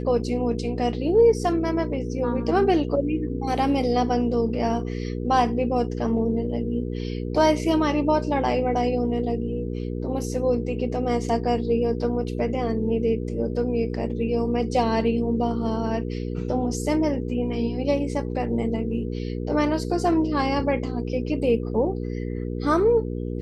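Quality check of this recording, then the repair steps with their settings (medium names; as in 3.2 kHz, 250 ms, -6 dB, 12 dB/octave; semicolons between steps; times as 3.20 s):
hum 60 Hz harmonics 8 -29 dBFS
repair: de-hum 60 Hz, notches 8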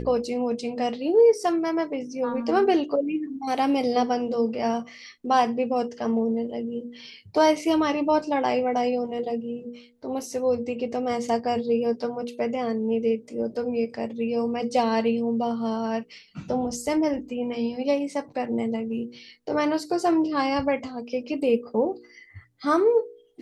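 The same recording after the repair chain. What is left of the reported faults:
nothing left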